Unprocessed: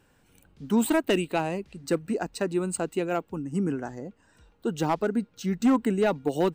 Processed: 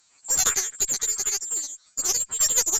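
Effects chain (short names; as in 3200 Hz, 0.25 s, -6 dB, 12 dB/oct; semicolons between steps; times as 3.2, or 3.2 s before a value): spectral dilation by 60 ms; HPF 210 Hz 6 dB/oct; inverted band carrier 3400 Hz; speed mistake 33 rpm record played at 78 rpm; added harmonics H 2 -9 dB, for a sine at -9 dBFS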